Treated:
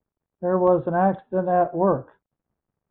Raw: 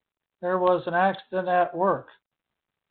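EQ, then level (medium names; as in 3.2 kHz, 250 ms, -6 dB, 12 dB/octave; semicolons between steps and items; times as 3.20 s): low-pass 1.1 kHz 12 dB/octave; bass shelf 400 Hz +10 dB; 0.0 dB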